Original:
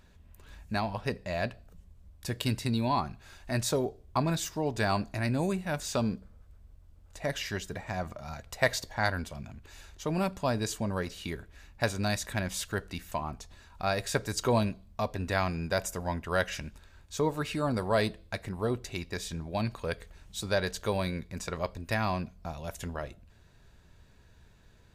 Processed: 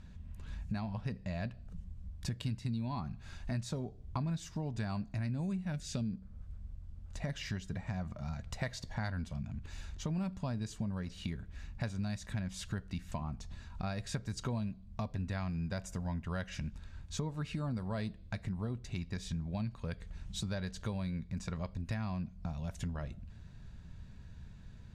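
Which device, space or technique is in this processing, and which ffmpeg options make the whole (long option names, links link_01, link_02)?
jukebox: -filter_complex "[0:a]asettb=1/sr,asplit=3[link_01][link_02][link_03];[link_01]atrim=end=5.724[link_04];[link_02]atrim=start=5.72:end=6.13,asetpts=PTS-STARTPTS,afade=type=in:duration=0.004:curve=qsin,afade=type=out:start_time=0.406:duration=0.004:curve=qsin,equalizer=frequency=1000:width=1.7:gain=-13.5[link_05];[link_03]atrim=start=6.126[link_06];[link_04][link_05]acrossfade=duration=0.004:curve1=hsin:curve2=qsin[link_07];[link_07][link_06]acrossfade=duration=0.004:curve1=qsin:curve2=hsin,lowpass=7800,lowshelf=frequency=270:width_type=q:width=1.5:gain=9,acompressor=threshold=-35dB:ratio=4,volume=-1dB"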